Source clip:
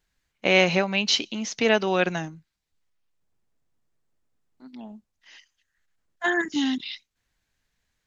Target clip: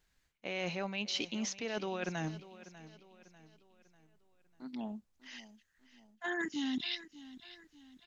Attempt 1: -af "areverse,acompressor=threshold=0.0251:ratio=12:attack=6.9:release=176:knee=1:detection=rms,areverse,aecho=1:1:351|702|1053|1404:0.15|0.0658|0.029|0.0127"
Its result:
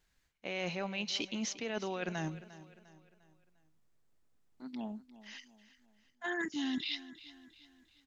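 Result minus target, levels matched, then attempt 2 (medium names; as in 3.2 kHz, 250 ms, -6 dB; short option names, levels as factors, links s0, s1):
echo 244 ms early
-af "areverse,acompressor=threshold=0.0251:ratio=12:attack=6.9:release=176:knee=1:detection=rms,areverse,aecho=1:1:595|1190|1785|2380:0.15|0.0658|0.029|0.0127"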